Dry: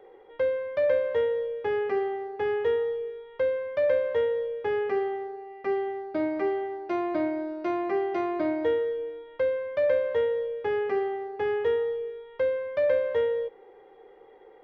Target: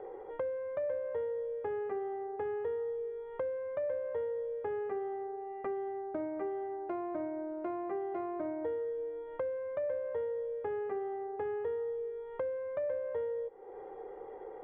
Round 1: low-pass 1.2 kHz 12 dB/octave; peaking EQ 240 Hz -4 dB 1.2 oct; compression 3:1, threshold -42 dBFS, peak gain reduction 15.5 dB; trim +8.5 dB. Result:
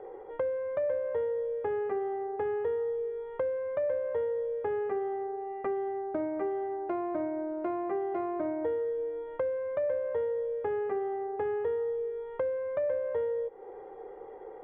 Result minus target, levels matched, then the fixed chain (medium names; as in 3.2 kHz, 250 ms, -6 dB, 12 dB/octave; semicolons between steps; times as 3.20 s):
compression: peak gain reduction -4.5 dB
low-pass 1.2 kHz 12 dB/octave; peaking EQ 240 Hz -4 dB 1.2 oct; compression 3:1, threshold -49 dBFS, peak gain reduction 20 dB; trim +8.5 dB